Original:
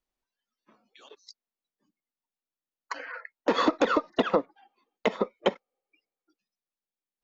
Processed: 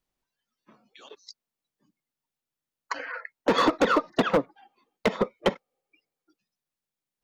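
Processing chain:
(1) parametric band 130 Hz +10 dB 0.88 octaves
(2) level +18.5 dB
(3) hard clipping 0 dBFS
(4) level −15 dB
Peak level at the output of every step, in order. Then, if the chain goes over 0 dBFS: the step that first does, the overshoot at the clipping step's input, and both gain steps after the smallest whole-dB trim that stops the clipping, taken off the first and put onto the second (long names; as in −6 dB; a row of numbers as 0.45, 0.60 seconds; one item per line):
−9.5, +9.0, 0.0, −15.0 dBFS
step 2, 9.0 dB
step 2 +9.5 dB, step 4 −6 dB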